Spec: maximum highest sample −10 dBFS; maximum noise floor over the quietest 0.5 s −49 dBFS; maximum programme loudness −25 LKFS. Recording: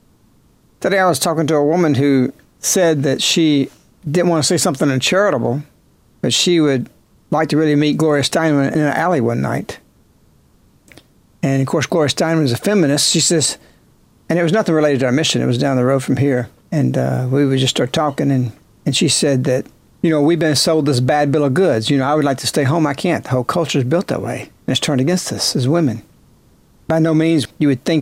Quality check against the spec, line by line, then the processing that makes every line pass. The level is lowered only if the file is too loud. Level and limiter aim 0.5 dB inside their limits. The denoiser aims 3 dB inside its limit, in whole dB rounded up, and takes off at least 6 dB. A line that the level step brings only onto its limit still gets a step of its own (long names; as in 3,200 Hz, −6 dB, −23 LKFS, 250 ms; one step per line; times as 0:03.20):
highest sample −5.0 dBFS: out of spec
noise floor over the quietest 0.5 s −53 dBFS: in spec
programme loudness −16.0 LKFS: out of spec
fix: level −9.5 dB